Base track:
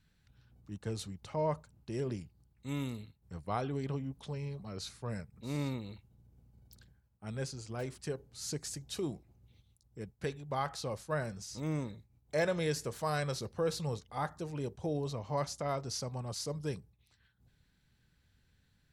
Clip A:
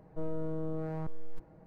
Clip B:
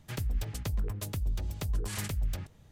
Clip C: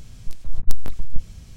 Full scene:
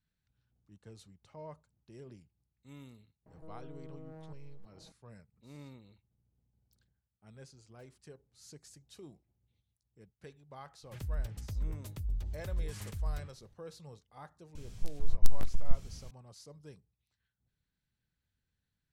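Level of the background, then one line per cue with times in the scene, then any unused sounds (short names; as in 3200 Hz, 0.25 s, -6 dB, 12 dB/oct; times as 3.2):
base track -14.5 dB
3.26 add A -3 dB + compressor 2:1, threshold -52 dBFS
10.83 add B -12 dB + low shelf 110 Hz +10.5 dB
14.55 add C -6 dB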